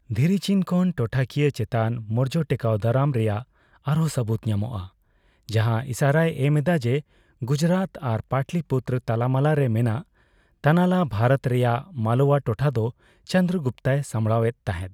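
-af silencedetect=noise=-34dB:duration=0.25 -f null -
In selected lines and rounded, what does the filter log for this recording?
silence_start: 3.42
silence_end: 3.87 | silence_duration: 0.45
silence_start: 4.86
silence_end: 5.49 | silence_duration: 0.63
silence_start: 7.00
silence_end: 7.42 | silence_duration: 0.41
silence_start: 10.01
silence_end: 10.64 | silence_duration: 0.63
silence_start: 12.90
silence_end: 13.27 | silence_duration: 0.37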